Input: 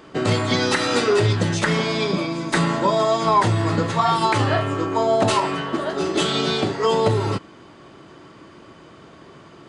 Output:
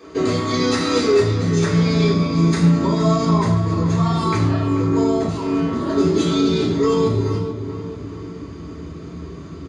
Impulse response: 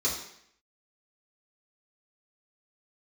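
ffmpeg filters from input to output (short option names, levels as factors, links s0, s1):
-filter_complex "[0:a]asubboost=boost=5.5:cutoff=240,asettb=1/sr,asplit=3[s0][s1][s2];[s0]atrim=end=5.274[s3];[s1]atrim=start=5.27:end=5.73,asetpts=PTS-STARTPTS,afade=t=in:d=0.004:c=qsin,afade=t=out:st=0.456:d=0.004:c=qsin,acompressor=threshold=0.0631:ratio=5[s4];[s2]atrim=start=5.726[s5];[s3][s4]acrossfade=d=0.004:c1=hsin:c2=qsin[s6];[s6][s5]acrossfade=d=0.004:c1=qsin:c2=hsin,alimiter=limit=0.188:level=0:latency=1:release=303,asplit=2[s7][s8];[s8]adelay=436,lowpass=f=2100:p=1,volume=0.335,asplit=2[s9][s10];[s10]adelay=436,lowpass=f=2100:p=1,volume=0.51,asplit=2[s11][s12];[s12]adelay=436,lowpass=f=2100:p=1,volume=0.51,asplit=2[s13][s14];[s14]adelay=436,lowpass=f=2100:p=1,volume=0.51,asplit=2[s15][s16];[s16]adelay=436,lowpass=f=2100:p=1,volume=0.51,asplit=2[s17][s18];[s18]adelay=436,lowpass=f=2100:p=1,volume=0.51[s19];[s7][s9][s11][s13][s15][s17][s19]amix=inputs=7:normalize=0[s20];[1:a]atrim=start_sample=2205,afade=t=out:st=0.21:d=0.01,atrim=end_sample=9702[s21];[s20][s21]afir=irnorm=-1:irlink=0,volume=0.531"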